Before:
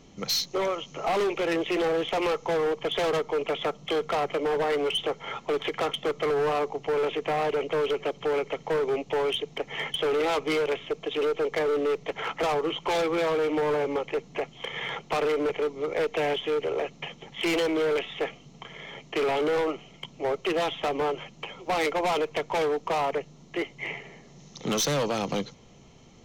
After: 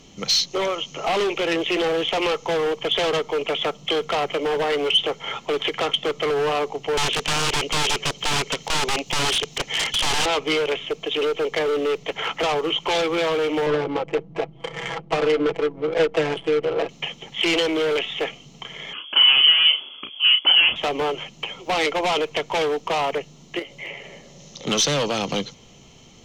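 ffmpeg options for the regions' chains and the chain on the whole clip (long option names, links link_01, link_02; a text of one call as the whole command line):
ffmpeg -i in.wav -filter_complex "[0:a]asettb=1/sr,asplit=3[link_01][link_02][link_03];[link_01]atrim=end=6.974[link_04];[link_02]atrim=start=6.97:end=10.26,asetpts=PTS-STARTPTS,afade=type=in:duration=0.004:curve=qsin,afade=type=out:start_time=3.286:duration=0.004:curve=qsin,aemphasis=mode=production:type=75kf,aeval=exprs='(mod(13.3*val(0)+1,2)-1)/13.3':channel_layout=same[link_05];[link_03]atrim=start=10.256[link_06];[link_04][link_05]acrossfade=duration=0.004:curve1=hsin:curve2=qsin[link_07];[link_07][link_06]acrossfade=duration=0.004:curve1=qsin:curve2=hsin,asettb=1/sr,asplit=3[link_08][link_09][link_10];[link_08]atrim=end=13.664[link_11];[link_09]atrim=start=13.66:end=16.89,asetpts=PTS-STARTPTS,afade=type=in:duration=0.004:curve=qsin,afade=type=out:start_time=3.226:duration=0.004:curve=qsin,aecho=1:1:6.1:0.96,atrim=end_sample=142443,adynamicsmooth=sensitivity=1.5:basefreq=620[link_12];[link_10]atrim=start=16.886[link_13];[link_11][link_12]acrossfade=duration=0.004:curve1=hsin:curve2=qsin[link_14];[link_14][link_13]acrossfade=duration=0.004:curve1=qsin:curve2=hsin,asettb=1/sr,asplit=3[link_15][link_16][link_17];[link_15]atrim=end=18.934[link_18];[link_16]atrim=start=18.93:end=20.76,asetpts=PTS-STARTPTS,afade=type=in:duration=0.004:curve=qsin,afade=type=out:start_time=1.826:duration=0.004:curve=qsin,asplit=2[link_19][link_20];[link_20]adelay=34,volume=-6.5dB[link_21];[link_19][link_21]amix=inputs=2:normalize=0,atrim=end_sample=80703,lowpass=frequency=2900:width_type=q:width=0.5098,lowpass=frequency=2900:width_type=q:width=0.6013,lowpass=frequency=2900:width_type=q:width=0.9,lowpass=frequency=2900:width_type=q:width=2.563,afreqshift=-3400[link_22];[link_17]atrim=start=20.756[link_23];[link_18][link_22]acrossfade=duration=0.004:curve1=hsin:curve2=qsin[link_24];[link_24][link_23]acrossfade=duration=0.004:curve1=qsin:curve2=hsin,asettb=1/sr,asplit=3[link_25][link_26][link_27];[link_25]atrim=end=23.594[link_28];[link_26]atrim=start=23.59:end=24.67,asetpts=PTS-STARTPTS,afade=type=in:duration=0.004:curve=qsin,afade=type=out:start_time=1.076:duration=0.004:curve=qsin,equalizer=frequency=560:width=7.1:gain=13,acompressor=threshold=-41dB:ratio=2:attack=3.2:release=140:knee=1:detection=peak,asplit=2[link_29][link_30];[link_30]adelay=18,volume=-13.5dB[link_31];[link_29][link_31]amix=inputs=2:normalize=0,atrim=end_sample=47628[link_32];[link_27]atrim=start=24.666[link_33];[link_28][link_32]acrossfade=duration=0.004:curve1=hsin:curve2=qsin[link_34];[link_34][link_33]acrossfade=duration=0.004:curve1=qsin:curve2=hsin,aemphasis=mode=production:type=cd,acrossover=split=7400[link_35][link_36];[link_36]acompressor=threshold=-57dB:ratio=4:attack=1:release=60[link_37];[link_35][link_37]amix=inputs=2:normalize=0,equalizer=frequency=3000:width=2.8:gain=5.5,volume=3.5dB" out.wav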